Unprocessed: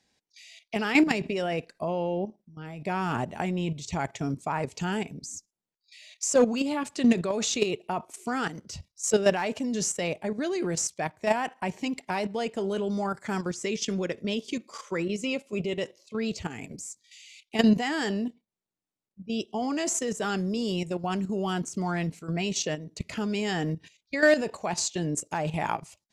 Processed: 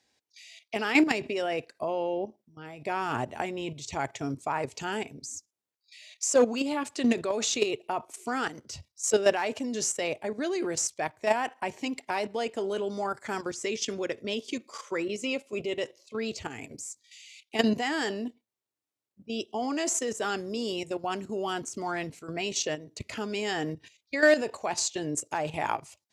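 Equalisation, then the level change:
high-pass filter 87 Hz
parametric band 180 Hz −14.5 dB 0.42 octaves
0.0 dB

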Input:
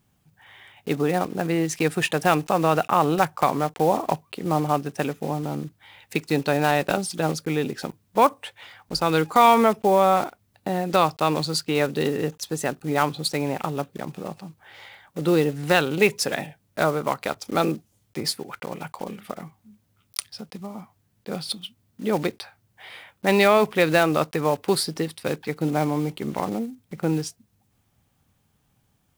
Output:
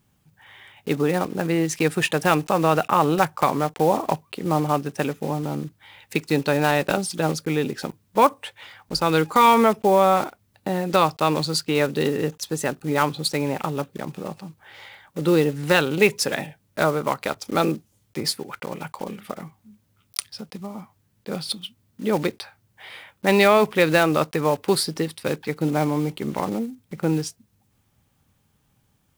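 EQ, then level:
notch filter 710 Hz, Q 12
+1.5 dB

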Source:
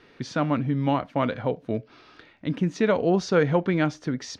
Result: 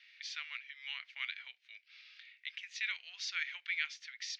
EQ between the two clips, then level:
Chebyshev high-pass filter 2,100 Hz, order 4
high-frequency loss of the air 150 metres
+3.5 dB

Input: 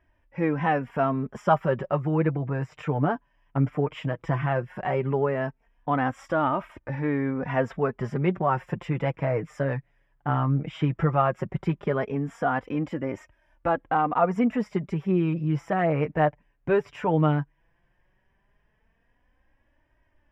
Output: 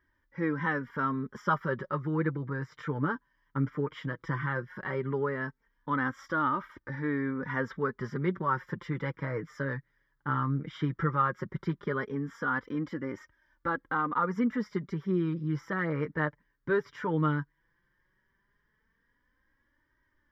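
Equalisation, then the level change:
low-shelf EQ 180 Hz −12 dB
phaser with its sweep stopped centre 2,600 Hz, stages 6
+1.0 dB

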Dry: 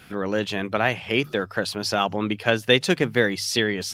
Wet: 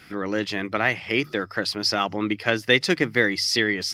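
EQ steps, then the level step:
thirty-one-band graphic EQ 315 Hz +7 dB, 1,250 Hz +4 dB, 2,000 Hz +10 dB, 5,000 Hz +11 dB
−3.5 dB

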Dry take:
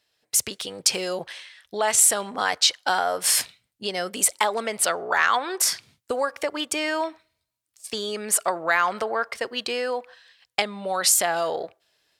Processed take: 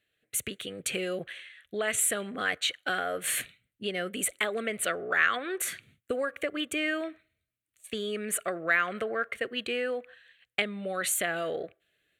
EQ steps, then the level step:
high-shelf EQ 4,200 Hz −7 dB
phaser with its sweep stopped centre 2,200 Hz, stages 4
0.0 dB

